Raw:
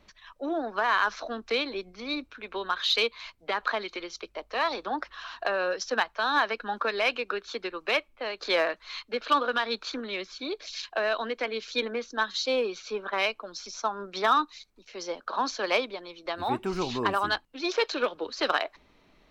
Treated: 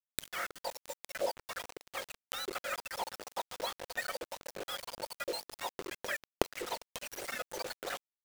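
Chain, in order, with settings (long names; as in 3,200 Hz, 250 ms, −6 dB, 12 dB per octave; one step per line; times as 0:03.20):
frequency axis turned over on the octave scale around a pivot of 960 Hz
notch filter 2,800 Hz, Q 10
on a send: single-tap delay 332 ms −22.5 dB
on the sum: wrong playback speed 33 rpm record played at 78 rpm
bit reduction 5 bits
gate with flip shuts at −31 dBFS, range −27 dB
highs frequency-modulated by the lows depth 0.23 ms
level +15.5 dB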